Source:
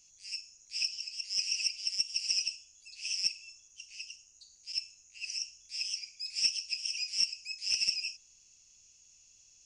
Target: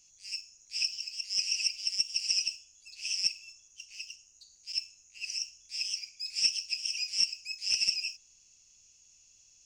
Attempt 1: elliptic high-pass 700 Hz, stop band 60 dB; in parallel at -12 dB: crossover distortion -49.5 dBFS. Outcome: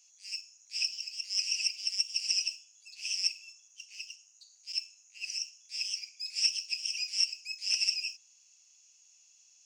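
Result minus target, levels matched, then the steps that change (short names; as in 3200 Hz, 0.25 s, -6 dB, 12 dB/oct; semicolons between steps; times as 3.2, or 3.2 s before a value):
500 Hz band -9.5 dB
remove: elliptic high-pass 700 Hz, stop band 60 dB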